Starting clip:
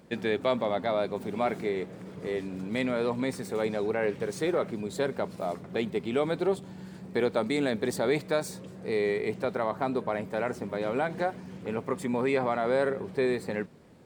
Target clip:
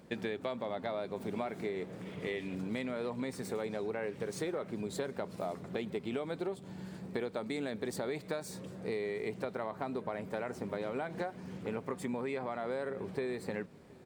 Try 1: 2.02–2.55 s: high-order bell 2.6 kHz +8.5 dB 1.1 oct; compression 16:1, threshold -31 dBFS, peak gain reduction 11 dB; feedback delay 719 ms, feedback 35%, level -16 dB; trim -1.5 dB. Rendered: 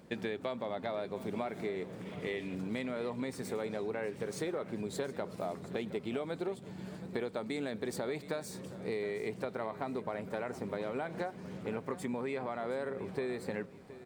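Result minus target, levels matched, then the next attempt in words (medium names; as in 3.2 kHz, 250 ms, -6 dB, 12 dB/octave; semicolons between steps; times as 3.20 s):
echo-to-direct +10 dB
2.02–2.55 s: high-order bell 2.6 kHz +8.5 dB 1.1 oct; compression 16:1, threshold -31 dBFS, peak gain reduction 11 dB; feedback delay 719 ms, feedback 35%, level -26 dB; trim -1.5 dB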